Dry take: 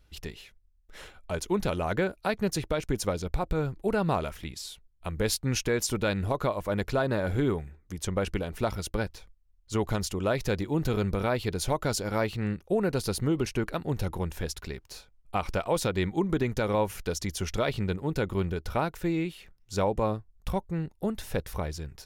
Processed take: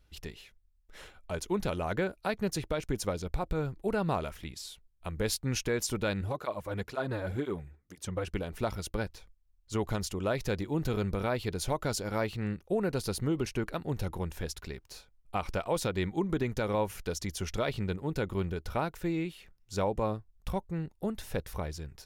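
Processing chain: 6.21–8.34 tape flanging out of phase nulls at 2 Hz, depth 5.3 ms; gain -3.5 dB

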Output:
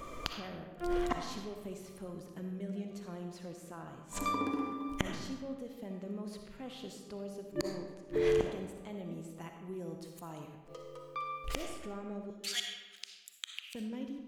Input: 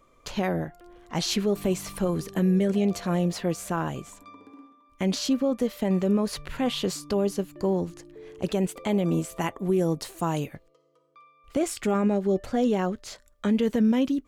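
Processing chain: 12.3–13.75 Chebyshev high-pass 2700 Hz, order 3; flipped gate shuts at -34 dBFS, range -34 dB; reverb RT60 1.3 s, pre-delay 20 ms, DRR 3.5 dB; gain +14.5 dB

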